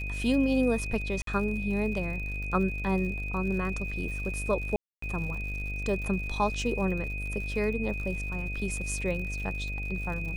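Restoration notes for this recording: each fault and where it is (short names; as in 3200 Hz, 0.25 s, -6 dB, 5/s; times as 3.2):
buzz 50 Hz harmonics 15 -35 dBFS
crackle 99/s -38 dBFS
tone 2500 Hz -36 dBFS
1.22–1.27 gap 53 ms
4.76–5.02 gap 0.264 s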